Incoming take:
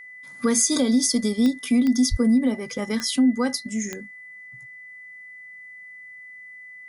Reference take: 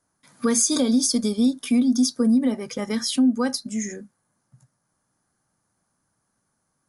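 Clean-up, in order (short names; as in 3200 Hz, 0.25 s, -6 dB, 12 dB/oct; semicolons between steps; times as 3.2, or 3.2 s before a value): de-click; notch 2000 Hz, Q 30; de-plosive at 2.1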